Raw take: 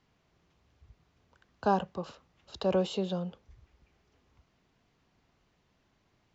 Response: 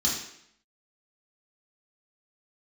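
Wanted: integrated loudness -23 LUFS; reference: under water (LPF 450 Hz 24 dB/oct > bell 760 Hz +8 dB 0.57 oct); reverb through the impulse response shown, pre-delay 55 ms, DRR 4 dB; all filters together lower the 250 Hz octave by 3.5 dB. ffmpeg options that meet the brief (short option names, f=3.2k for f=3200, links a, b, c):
-filter_complex "[0:a]equalizer=f=250:t=o:g=-6,asplit=2[a][b];[1:a]atrim=start_sample=2205,adelay=55[c];[b][c]afir=irnorm=-1:irlink=0,volume=-12.5dB[d];[a][d]amix=inputs=2:normalize=0,lowpass=f=450:w=0.5412,lowpass=f=450:w=1.3066,equalizer=f=760:t=o:w=0.57:g=8,volume=13dB"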